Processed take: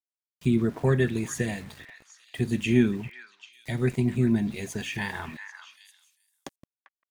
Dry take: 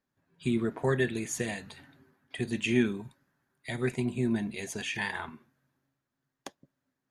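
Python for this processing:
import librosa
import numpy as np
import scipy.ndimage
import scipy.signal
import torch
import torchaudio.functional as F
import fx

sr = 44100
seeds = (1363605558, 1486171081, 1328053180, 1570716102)

y = fx.low_shelf(x, sr, hz=250.0, db=10.5)
y = np.where(np.abs(y) >= 10.0 ** (-45.5 / 20.0), y, 0.0)
y = fx.echo_stepped(y, sr, ms=395, hz=1600.0, octaves=1.4, feedback_pct=70, wet_db=-8)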